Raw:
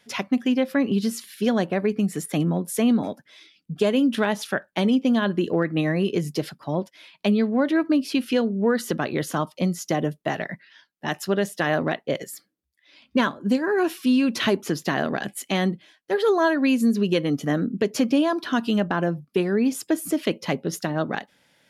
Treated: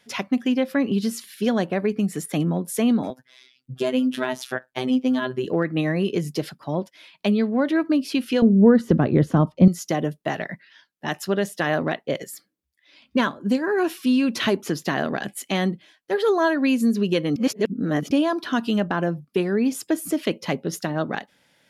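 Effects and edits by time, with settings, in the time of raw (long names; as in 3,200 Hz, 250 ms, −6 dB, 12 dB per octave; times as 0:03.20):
0:03.10–0:05.45: phases set to zero 128 Hz
0:08.42–0:09.68: spectral tilt −4.5 dB per octave
0:17.36–0:18.11: reverse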